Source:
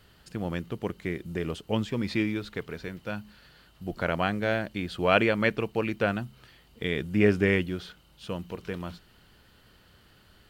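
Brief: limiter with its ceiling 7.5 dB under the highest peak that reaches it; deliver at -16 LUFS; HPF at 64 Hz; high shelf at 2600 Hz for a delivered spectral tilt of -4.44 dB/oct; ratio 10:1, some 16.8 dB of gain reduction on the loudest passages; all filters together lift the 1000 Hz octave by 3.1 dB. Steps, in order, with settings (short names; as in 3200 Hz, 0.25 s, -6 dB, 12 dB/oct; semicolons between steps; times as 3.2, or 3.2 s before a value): HPF 64 Hz; bell 1000 Hz +4 dB; high shelf 2600 Hz +3 dB; compressor 10:1, threshold -32 dBFS; gain +24 dB; limiter -1 dBFS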